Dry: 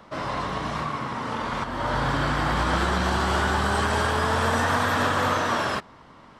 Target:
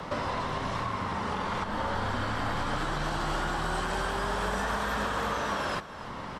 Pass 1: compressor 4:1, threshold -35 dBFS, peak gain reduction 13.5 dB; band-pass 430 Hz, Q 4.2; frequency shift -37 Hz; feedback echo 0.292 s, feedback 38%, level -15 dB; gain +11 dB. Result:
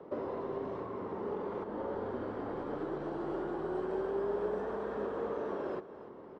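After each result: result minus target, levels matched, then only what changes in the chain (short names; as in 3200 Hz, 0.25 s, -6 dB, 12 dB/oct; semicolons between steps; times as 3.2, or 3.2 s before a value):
500 Hz band +7.0 dB; compressor: peak gain reduction -6 dB
remove: band-pass 430 Hz, Q 4.2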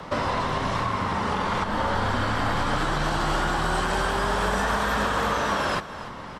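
compressor: peak gain reduction -6 dB
change: compressor 4:1, threshold -43 dBFS, peak gain reduction 19.5 dB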